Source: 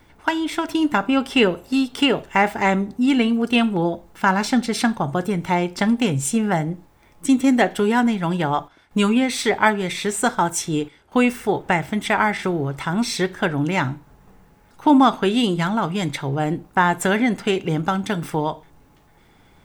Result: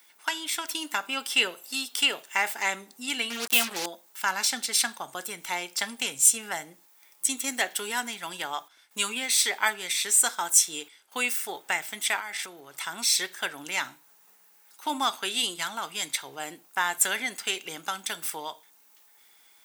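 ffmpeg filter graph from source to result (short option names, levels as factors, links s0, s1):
-filter_complex "[0:a]asettb=1/sr,asplit=3[s0][s1][s2];[s0]atrim=end=3.304[s3];[s1]atrim=start=3.3:end=3.86,asetpts=PTS-STARTPTS,afade=t=in:d=0.004:c=qsin,afade=t=out:st=0.556:d=0.004:c=qsin,equalizer=f=460:w=0.4:g=3,asplit=2[s4][s5];[s5]adelay=26,volume=0.224[s6];[s4][s6]amix=inputs=2:normalize=0,atrim=end_sample=24696,acrusher=bits=3:mix=0:aa=0.5[s7];[s2]atrim=start=3.856[s8];[s3][s7]acrossfade=d=0.004:c1=hsin:c2=qsin[s9];[s9][s8]acrossfade=d=0.004:c1=qsin:c2=hsin,asettb=1/sr,asplit=3[s10][s11][s12];[s10]atrim=end=12.194[s13];[s11]atrim=start=12.19:end=12.74,asetpts=PTS-STARTPTS,afade=t=in:d=0.004:c=qsin,afade=t=out:st=0.546:d=0.004:c=qsin,highpass=58,acompressor=threshold=0.0562:ratio=4:attack=3.2:release=140:knee=1:detection=peak[s14];[s12]atrim=start=12.736[s15];[s13][s14]acrossfade=d=0.004:c1=hsin:c2=qsin[s16];[s16][s15]acrossfade=d=0.004:c1=qsin:c2=hsin,highpass=190,aderivative,volume=2.11"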